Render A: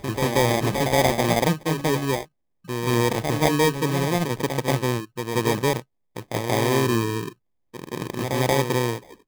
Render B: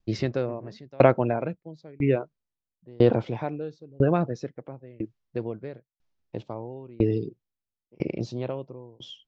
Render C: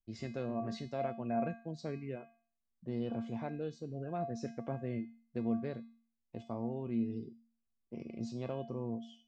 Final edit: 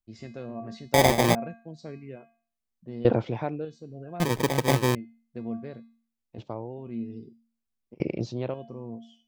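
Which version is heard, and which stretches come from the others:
C
0.94–1.35 s: from A
3.05–3.65 s: from B
4.20–4.95 s: from A
6.38–6.78 s: from B
7.94–8.54 s: from B

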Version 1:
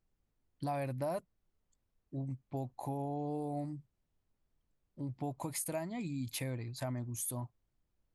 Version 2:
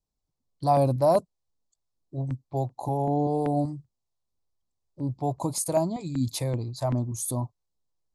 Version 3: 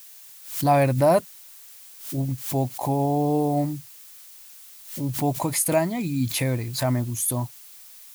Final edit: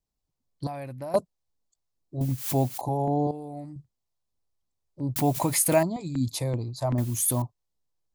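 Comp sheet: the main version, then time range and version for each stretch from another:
2
0.67–1.14 s: from 1
2.21–2.81 s: from 3
3.31–3.76 s: from 1
5.16–5.83 s: from 3
6.98–7.42 s: from 3

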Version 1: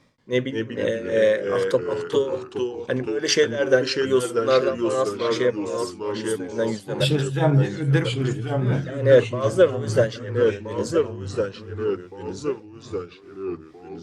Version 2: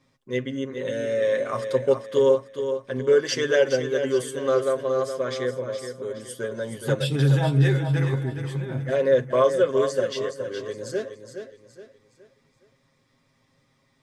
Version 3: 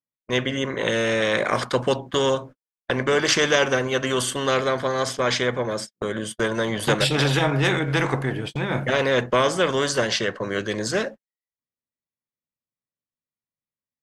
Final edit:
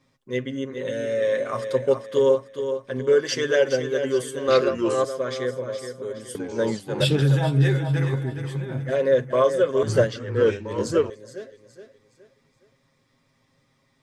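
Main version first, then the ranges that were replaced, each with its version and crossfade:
2
4.48–5.05 s: from 1
6.35–7.22 s: from 1
9.83–11.10 s: from 1
not used: 3

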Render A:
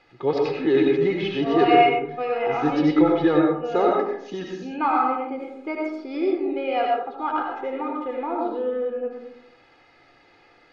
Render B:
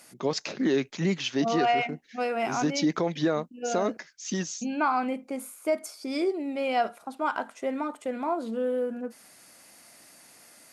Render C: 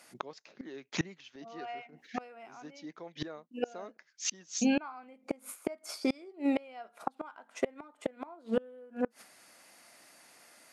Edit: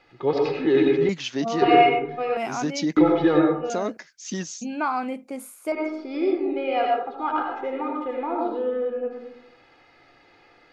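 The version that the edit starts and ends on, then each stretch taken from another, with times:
A
1.09–1.62 s: from B
2.37–2.97 s: from B
3.70–5.72 s: from B
not used: C

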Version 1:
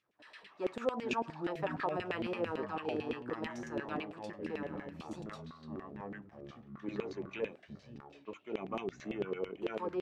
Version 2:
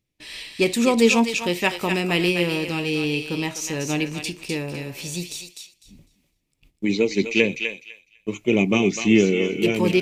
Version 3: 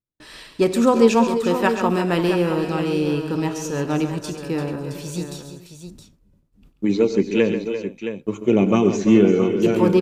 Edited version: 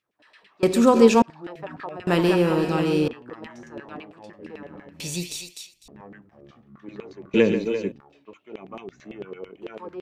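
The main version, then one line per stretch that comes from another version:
1
0.63–1.22 s: from 3
2.07–3.08 s: from 3
5.00–5.88 s: from 2
7.34–7.92 s: from 3

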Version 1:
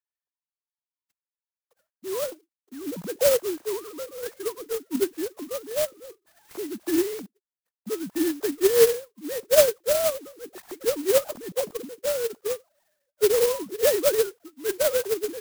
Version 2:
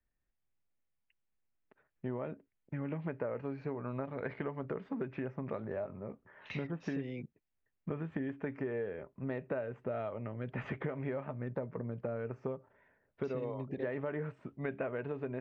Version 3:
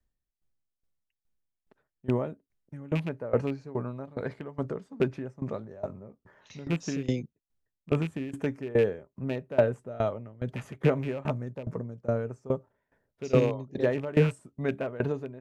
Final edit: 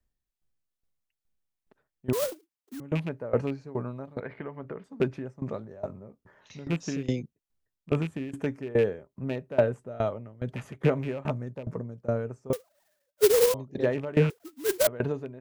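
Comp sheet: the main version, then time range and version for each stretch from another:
3
2.13–2.80 s: from 1
4.20–4.84 s: from 2
12.53–13.54 s: from 1
14.30–14.87 s: from 1

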